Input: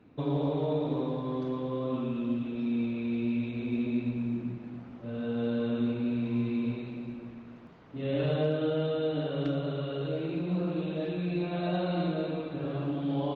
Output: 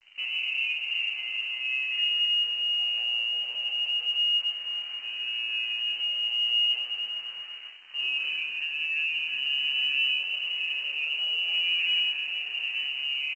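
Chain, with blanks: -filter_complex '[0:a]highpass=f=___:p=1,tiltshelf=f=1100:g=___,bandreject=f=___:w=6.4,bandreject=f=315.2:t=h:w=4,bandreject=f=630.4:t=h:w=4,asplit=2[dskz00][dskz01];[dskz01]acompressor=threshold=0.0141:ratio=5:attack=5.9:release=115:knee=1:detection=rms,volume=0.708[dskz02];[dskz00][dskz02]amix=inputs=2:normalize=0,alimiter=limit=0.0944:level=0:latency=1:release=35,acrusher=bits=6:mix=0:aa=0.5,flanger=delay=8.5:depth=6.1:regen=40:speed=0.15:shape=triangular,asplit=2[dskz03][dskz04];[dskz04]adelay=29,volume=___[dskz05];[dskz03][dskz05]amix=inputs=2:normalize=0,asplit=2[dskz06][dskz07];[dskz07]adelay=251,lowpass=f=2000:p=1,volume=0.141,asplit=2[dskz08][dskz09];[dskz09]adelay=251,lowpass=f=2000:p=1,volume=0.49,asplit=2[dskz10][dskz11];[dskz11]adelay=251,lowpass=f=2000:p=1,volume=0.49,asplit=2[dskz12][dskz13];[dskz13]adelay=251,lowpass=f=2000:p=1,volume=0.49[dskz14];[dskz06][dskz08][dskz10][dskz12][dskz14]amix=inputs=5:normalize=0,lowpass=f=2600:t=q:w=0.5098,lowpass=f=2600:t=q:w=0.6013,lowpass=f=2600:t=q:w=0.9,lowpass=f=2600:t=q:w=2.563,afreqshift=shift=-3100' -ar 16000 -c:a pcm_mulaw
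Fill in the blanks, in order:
190, 7, 1600, 0.562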